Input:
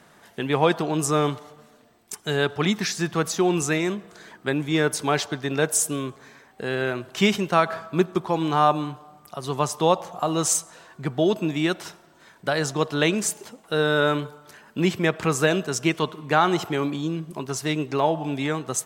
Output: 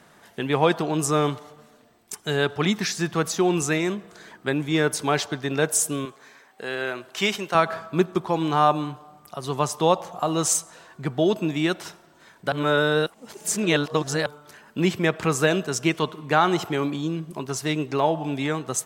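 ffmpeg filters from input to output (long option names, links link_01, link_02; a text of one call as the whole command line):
ffmpeg -i in.wav -filter_complex "[0:a]asettb=1/sr,asplit=3[link_01][link_02][link_03];[link_01]atrim=end=6.054[link_04];[link_02]atrim=start=6.05:end=7.55,asetpts=PTS-STARTPTS,afade=type=in:duration=0.004:curve=qsin,afade=type=out:start_time=1.496:duration=0.004:curve=qsin,highpass=frequency=530:poles=1[link_05];[link_03]atrim=start=7.546[link_06];[link_04][link_05]acrossfade=duration=0.004:curve1=hsin:curve2=qsin[link_07];[link_07][link_06]acrossfade=duration=0.004:curve1=qsin:curve2=hsin,asplit=3[link_08][link_09][link_10];[link_08]atrim=end=12.522[link_11];[link_09]atrim=start=12.518:end=14.262,asetpts=PTS-STARTPTS,areverse[link_12];[link_10]atrim=start=14.258[link_13];[link_11][link_12]acrossfade=duration=0.004:curve1=hsin:curve2=hsin[link_14];[link_14][link_13]acrossfade=duration=0.004:curve1=hsin:curve2=hsin" out.wav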